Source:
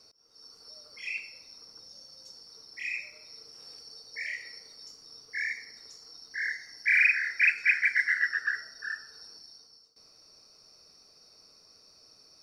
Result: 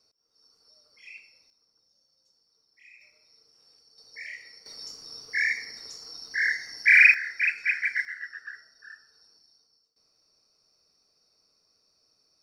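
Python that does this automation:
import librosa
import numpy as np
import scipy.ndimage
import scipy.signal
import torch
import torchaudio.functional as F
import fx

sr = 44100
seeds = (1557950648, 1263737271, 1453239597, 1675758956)

y = fx.gain(x, sr, db=fx.steps((0.0, -10.5), (1.5, -19.0), (3.01, -12.0), (3.98, -4.0), (4.66, 7.0), (7.14, -2.0), (8.05, -11.0)))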